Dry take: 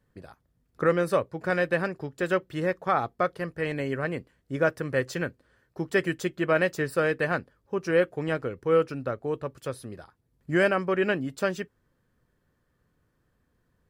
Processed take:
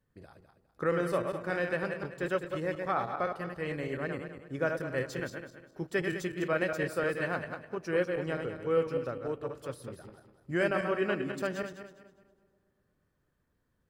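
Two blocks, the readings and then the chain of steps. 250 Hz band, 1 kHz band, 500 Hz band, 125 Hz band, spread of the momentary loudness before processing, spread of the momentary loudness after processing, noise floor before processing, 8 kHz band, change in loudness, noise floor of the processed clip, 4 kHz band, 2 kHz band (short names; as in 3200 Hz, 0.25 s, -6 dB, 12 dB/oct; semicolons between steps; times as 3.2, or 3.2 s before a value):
-5.5 dB, -5.5 dB, -5.5 dB, -5.5 dB, 11 LU, 11 LU, -73 dBFS, -5.5 dB, -5.5 dB, -76 dBFS, -5.5 dB, -5.5 dB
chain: regenerating reverse delay 0.102 s, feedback 54%, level -5 dB; analogue delay 0.119 s, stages 1024, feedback 71%, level -22 dB; gain -7 dB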